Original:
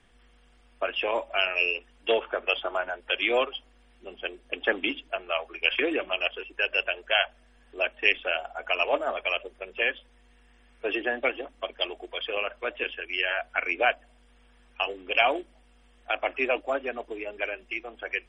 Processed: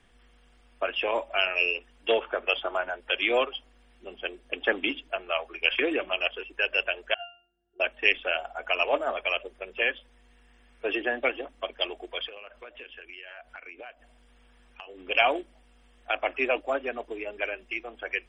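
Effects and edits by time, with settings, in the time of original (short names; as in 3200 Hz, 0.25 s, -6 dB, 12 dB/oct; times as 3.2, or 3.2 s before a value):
7.14–7.8 octave resonator F, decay 0.41 s
12.28–15.09 compressor, threshold -41 dBFS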